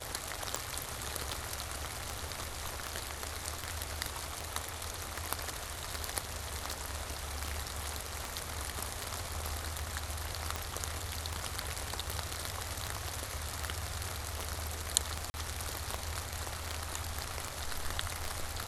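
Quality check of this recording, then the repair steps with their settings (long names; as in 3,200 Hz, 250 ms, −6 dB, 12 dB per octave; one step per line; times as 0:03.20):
scratch tick 78 rpm
0:15.30–0:15.34: drop-out 40 ms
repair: click removal
repair the gap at 0:15.30, 40 ms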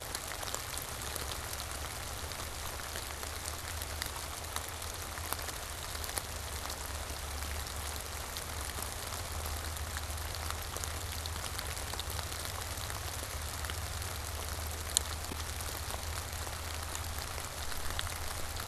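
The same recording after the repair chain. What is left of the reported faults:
none of them is left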